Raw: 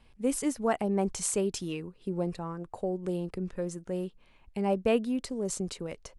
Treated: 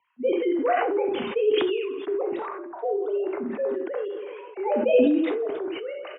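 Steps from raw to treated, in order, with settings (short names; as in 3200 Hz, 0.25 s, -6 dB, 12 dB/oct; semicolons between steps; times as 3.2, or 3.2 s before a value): sine-wave speech; feedback echo 0.163 s, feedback 34%, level -20 dB; non-linear reverb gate 0.11 s flat, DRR 2.5 dB; frequency shift +30 Hz; low-pass opened by the level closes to 1800 Hz, open at -23.5 dBFS; sustainer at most 29 dB/s; gain +2 dB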